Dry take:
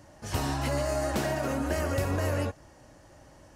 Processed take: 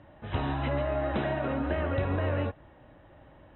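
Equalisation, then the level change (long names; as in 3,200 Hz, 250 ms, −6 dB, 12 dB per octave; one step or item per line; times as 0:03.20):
linear-phase brick-wall low-pass 4,000 Hz
high-frequency loss of the air 110 metres
0.0 dB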